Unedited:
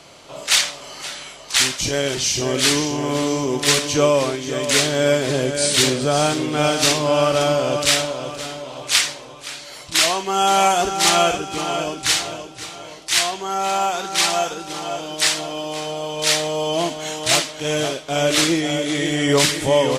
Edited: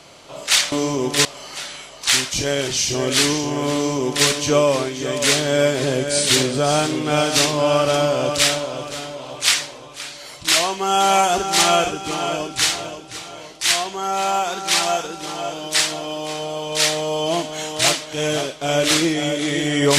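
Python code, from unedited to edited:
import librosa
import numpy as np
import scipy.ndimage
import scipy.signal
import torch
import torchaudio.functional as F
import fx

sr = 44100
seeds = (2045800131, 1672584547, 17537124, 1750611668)

y = fx.edit(x, sr, fx.duplicate(start_s=3.21, length_s=0.53, to_s=0.72), tone=tone)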